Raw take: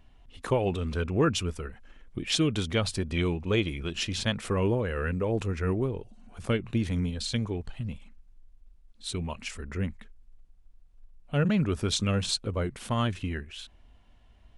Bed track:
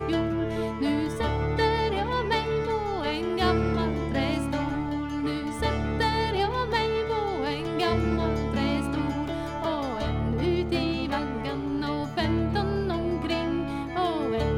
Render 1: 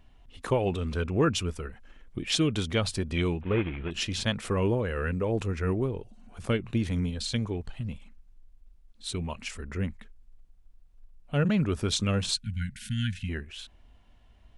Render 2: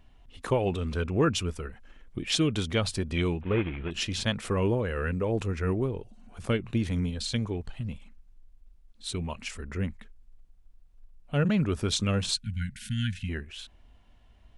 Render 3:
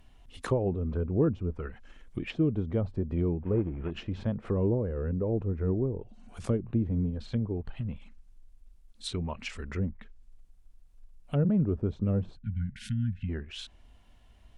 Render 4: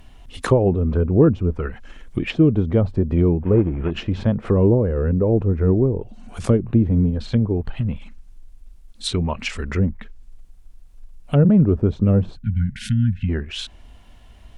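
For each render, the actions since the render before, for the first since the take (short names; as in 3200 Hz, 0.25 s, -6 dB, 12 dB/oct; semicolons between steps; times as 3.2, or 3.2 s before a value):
3.41–3.91 CVSD 16 kbps; 12.36–13.29 brick-wall FIR band-stop 250–1400 Hz
nothing audible
treble ducked by the level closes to 550 Hz, closed at -26.5 dBFS; high shelf 7700 Hz +11 dB
gain +11.5 dB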